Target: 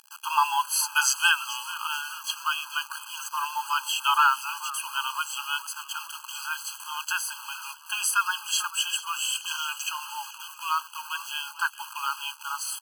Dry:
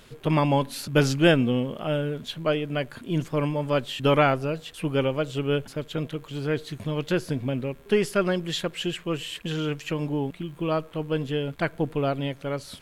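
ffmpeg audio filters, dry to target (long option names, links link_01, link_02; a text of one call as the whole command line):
ffmpeg -i in.wav -filter_complex "[0:a]highpass=frequency=210:poles=1,highshelf=frequency=5300:width_type=q:width=1.5:gain=8,acontrast=54,acrusher=bits=5:mix=0:aa=0.000001,asplit=2[link_01][link_02];[link_02]asplit=5[link_03][link_04][link_05][link_06][link_07];[link_03]adelay=438,afreqshift=-130,volume=-16dB[link_08];[link_04]adelay=876,afreqshift=-260,volume=-21.4dB[link_09];[link_05]adelay=1314,afreqshift=-390,volume=-26.7dB[link_10];[link_06]adelay=1752,afreqshift=-520,volume=-32.1dB[link_11];[link_07]adelay=2190,afreqshift=-650,volume=-37.4dB[link_12];[link_08][link_09][link_10][link_11][link_12]amix=inputs=5:normalize=0[link_13];[link_01][link_13]amix=inputs=2:normalize=0,afftfilt=real='re*eq(mod(floor(b*sr/1024/830),2),1)':imag='im*eq(mod(floor(b*sr/1024/830),2),1)':win_size=1024:overlap=0.75,volume=1.5dB" out.wav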